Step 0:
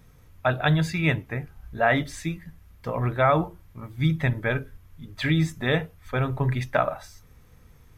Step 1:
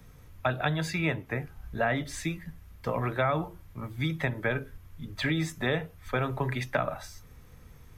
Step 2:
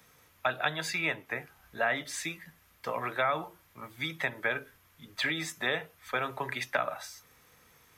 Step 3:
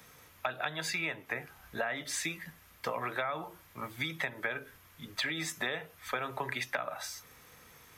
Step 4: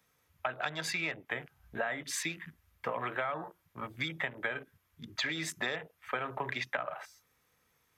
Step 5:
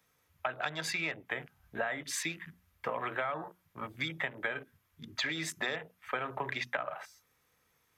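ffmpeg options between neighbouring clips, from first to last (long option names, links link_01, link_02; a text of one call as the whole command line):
ffmpeg -i in.wav -filter_complex "[0:a]acrossover=split=160|340|1400[link_01][link_02][link_03][link_04];[link_01]acompressor=threshold=-39dB:ratio=4[link_05];[link_02]acompressor=threshold=-38dB:ratio=4[link_06];[link_03]acompressor=threshold=-31dB:ratio=4[link_07];[link_04]acompressor=threshold=-35dB:ratio=4[link_08];[link_05][link_06][link_07][link_08]amix=inputs=4:normalize=0,volume=1.5dB" out.wav
ffmpeg -i in.wav -af "highpass=frequency=970:poles=1,volume=2.5dB" out.wav
ffmpeg -i in.wav -af "acompressor=threshold=-36dB:ratio=6,volume=4.5dB" out.wav
ffmpeg -i in.wav -af "afwtdn=0.00631" out.wav
ffmpeg -i in.wav -af "bandreject=frequency=60:width_type=h:width=6,bandreject=frequency=120:width_type=h:width=6,bandreject=frequency=180:width_type=h:width=6,bandreject=frequency=240:width_type=h:width=6" out.wav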